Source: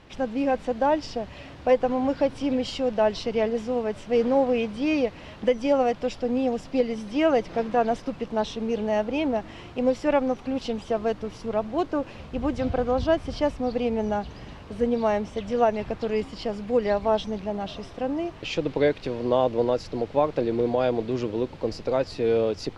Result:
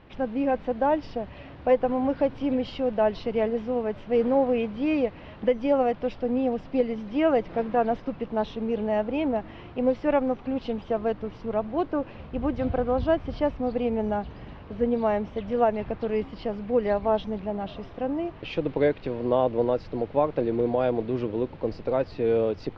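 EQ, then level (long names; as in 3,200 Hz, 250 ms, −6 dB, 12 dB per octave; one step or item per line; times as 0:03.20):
high-frequency loss of the air 290 metres
0.0 dB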